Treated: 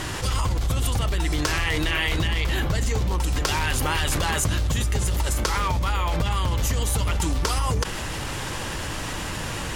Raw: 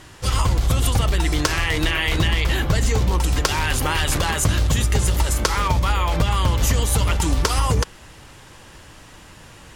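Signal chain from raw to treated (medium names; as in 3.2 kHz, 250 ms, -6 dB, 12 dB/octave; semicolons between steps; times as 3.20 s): in parallel at -11 dB: overload inside the chain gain 18 dB; on the sum: level flattener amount 70%; trim -8 dB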